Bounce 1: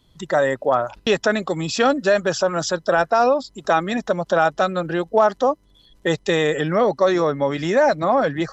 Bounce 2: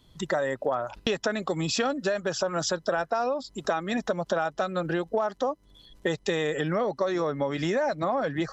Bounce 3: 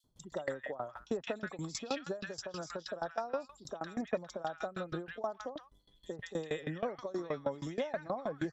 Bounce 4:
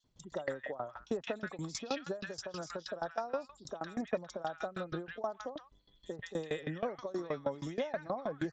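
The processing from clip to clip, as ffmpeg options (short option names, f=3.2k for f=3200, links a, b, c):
-af "acompressor=threshold=-24dB:ratio=6"
-filter_complex "[0:a]acrossover=split=1300|4300[a][b][c];[a]adelay=40[d];[b]adelay=170[e];[d][e][c]amix=inputs=3:normalize=0,aeval=exprs='val(0)*pow(10,-21*if(lt(mod(6.3*n/s,1),2*abs(6.3)/1000),1-mod(6.3*n/s,1)/(2*abs(6.3)/1000),(mod(6.3*n/s,1)-2*abs(6.3)/1000)/(1-2*abs(6.3)/1000))/20)':c=same,volume=-3.5dB"
-ar 16000 -c:a sbc -b:a 64k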